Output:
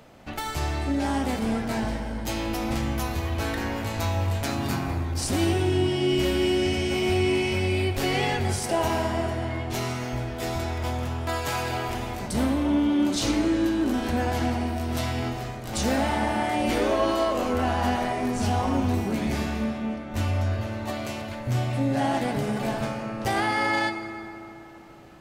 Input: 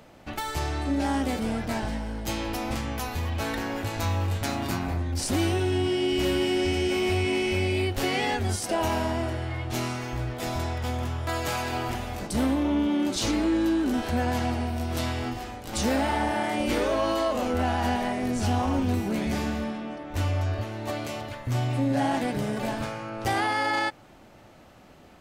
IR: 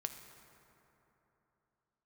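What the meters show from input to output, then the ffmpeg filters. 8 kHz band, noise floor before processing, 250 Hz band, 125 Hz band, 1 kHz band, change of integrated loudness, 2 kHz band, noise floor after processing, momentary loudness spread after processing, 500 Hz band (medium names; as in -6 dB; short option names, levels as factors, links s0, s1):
+0.5 dB, -51 dBFS, +1.5 dB, +1.5 dB, +1.0 dB, +1.5 dB, +1.0 dB, -38 dBFS, 8 LU, +1.5 dB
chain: -filter_complex "[1:a]atrim=start_sample=2205[s0];[0:a][s0]afir=irnorm=-1:irlink=0,volume=1.33"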